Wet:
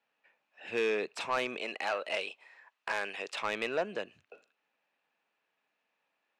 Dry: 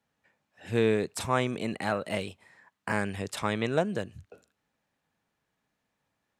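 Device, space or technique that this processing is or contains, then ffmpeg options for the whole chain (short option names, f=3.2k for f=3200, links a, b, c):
intercom: -filter_complex "[0:a]highpass=440,lowpass=4.2k,equalizer=f=2.6k:t=o:w=0.24:g=9.5,asoftclip=type=tanh:threshold=-23dB,asettb=1/sr,asplit=3[a][b][c];[a]atrim=end=1.574[d];[b]atrim=start=1.57:end=3.34,asetpts=PTS-STARTPTS,afade=t=in:d=0.004:c=qsin,afade=t=out:st=1.766:d=0.004:c=qsin,bass=f=250:g=-12,treble=f=4k:g=4[e];[c]atrim=start=3.336[f];[d][e]acrossfade=d=0.004:c1=hsin:c2=qsin[g];[g][f]acrossfade=d=0.004:c1=qsin:c2=hsin"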